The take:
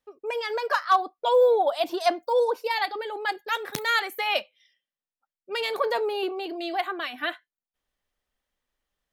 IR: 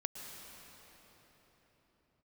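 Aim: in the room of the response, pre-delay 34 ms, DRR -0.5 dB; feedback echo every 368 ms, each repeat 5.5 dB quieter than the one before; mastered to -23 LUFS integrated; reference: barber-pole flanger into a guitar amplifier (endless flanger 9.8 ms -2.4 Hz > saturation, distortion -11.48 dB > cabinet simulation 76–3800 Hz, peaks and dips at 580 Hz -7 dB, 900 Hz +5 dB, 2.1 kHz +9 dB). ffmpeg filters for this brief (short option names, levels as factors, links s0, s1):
-filter_complex "[0:a]aecho=1:1:368|736|1104|1472|1840|2208|2576:0.531|0.281|0.149|0.079|0.0419|0.0222|0.0118,asplit=2[s0][s1];[1:a]atrim=start_sample=2205,adelay=34[s2];[s1][s2]afir=irnorm=-1:irlink=0,volume=1.06[s3];[s0][s3]amix=inputs=2:normalize=0,asplit=2[s4][s5];[s5]adelay=9.8,afreqshift=-2.4[s6];[s4][s6]amix=inputs=2:normalize=1,asoftclip=threshold=0.1,highpass=76,equalizer=f=580:t=q:w=4:g=-7,equalizer=f=900:t=q:w=4:g=5,equalizer=f=2100:t=q:w=4:g=9,lowpass=f=3800:w=0.5412,lowpass=f=3800:w=1.3066,volume=1.5"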